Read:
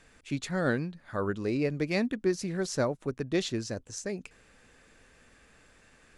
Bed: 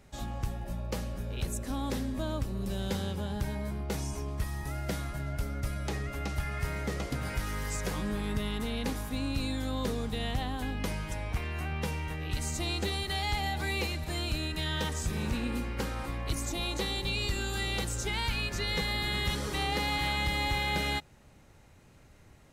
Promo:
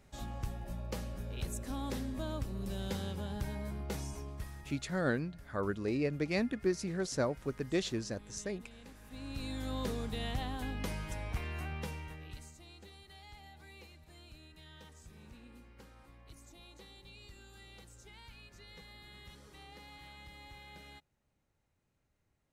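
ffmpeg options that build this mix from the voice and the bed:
-filter_complex "[0:a]adelay=4400,volume=-4dB[a];[1:a]volume=11.5dB,afade=t=out:st=3.92:d=0.98:silence=0.158489,afade=t=in:st=9:d=0.73:silence=0.149624,afade=t=out:st=11.53:d=1.02:silence=0.125893[b];[a][b]amix=inputs=2:normalize=0"

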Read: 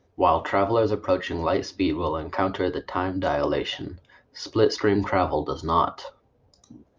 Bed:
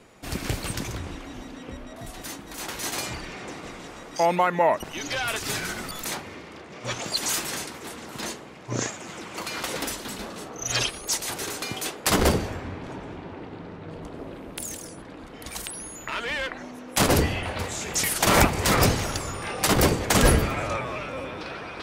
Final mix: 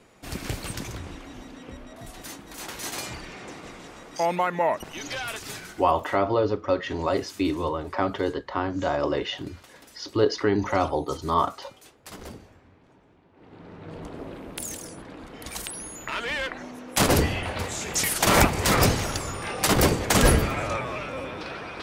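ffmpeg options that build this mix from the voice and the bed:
-filter_complex "[0:a]adelay=5600,volume=-1.5dB[a];[1:a]volume=18dB,afade=t=out:st=5.07:d=0.89:silence=0.125893,afade=t=in:st=13.33:d=0.67:silence=0.0891251[b];[a][b]amix=inputs=2:normalize=0"

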